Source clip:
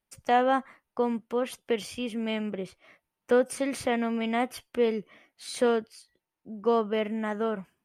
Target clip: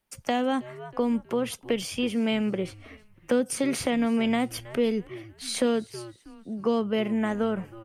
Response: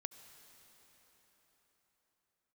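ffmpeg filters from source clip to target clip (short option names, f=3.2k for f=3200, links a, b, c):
-filter_complex "[0:a]asplit=4[a][b][c][d];[b]adelay=319,afreqshift=-110,volume=-22dB[e];[c]adelay=638,afreqshift=-220,volume=-29.7dB[f];[d]adelay=957,afreqshift=-330,volume=-37.5dB[g];[a][e][f][g]amix=inputs=4:normalize=0,acrossover=split=320|3000[h][i][j];[i]acompressor=threshold=-34dB:ratio=6[k];[h][k][j]amix=inputs=3:normalize=0,volume=6dB"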